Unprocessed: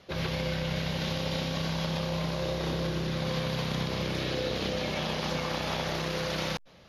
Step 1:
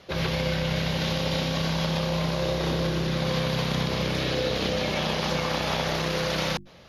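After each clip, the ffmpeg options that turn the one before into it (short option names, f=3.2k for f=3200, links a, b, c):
-af "bandreject=f=50:t=h:w=6,bandreject=f=100:t=h:w=6,bandreject=f=150:t=h:w=6,bandreject=f=200:t=h:w=6,bandreject=f=250:t=h:w=6,bandreject=f=300:t=h:w=6,bandreject=f=350:t=h:w=6,volume=5dB"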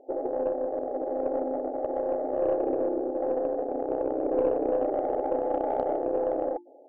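-af "afftfilt=real='re*between(b*sr/4096,250,870)':imag='im*between(b*sr/4096,250,870)':win_size=4096:overlap=0.75,aeval=exprs='0.141*(cos(1*acos(clip(val(0)/0.141,-1,1)))-cos(1*PI/2))+0.0178*(cos(2*acos(clip(val(0)/0.141,-1,1)))-cos(2*PI/2))+0.00251*(cos(7*acos(clip(val(0)/0.141,-1,1)))-cos(7*PI/2))':c=same,volume=4dB"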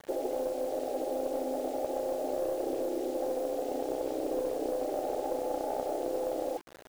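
-af "acompressor=threshold=-29dB:ratio=6,acrusher=bits=7:mix=0:aa=0.000001"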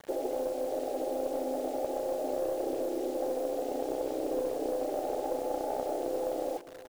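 -af "aecho=1:1:619:0.141"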